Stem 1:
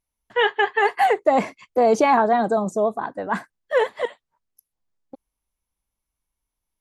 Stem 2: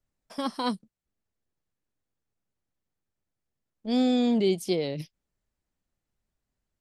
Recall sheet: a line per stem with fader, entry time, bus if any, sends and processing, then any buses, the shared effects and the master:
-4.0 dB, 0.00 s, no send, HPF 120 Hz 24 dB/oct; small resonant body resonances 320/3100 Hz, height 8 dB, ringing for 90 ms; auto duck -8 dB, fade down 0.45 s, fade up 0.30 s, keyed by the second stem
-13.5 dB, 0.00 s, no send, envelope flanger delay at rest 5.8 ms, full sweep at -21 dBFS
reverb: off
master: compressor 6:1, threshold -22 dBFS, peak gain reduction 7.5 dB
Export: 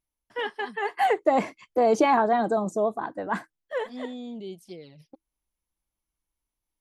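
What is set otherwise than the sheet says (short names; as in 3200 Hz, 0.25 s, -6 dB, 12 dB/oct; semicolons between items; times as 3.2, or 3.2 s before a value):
stem 1: missing HPF 120 Hz 24 dB/oct; master: missing compressor 6:1, threshold -22 dBFS, peak gain reduction 7.5 dB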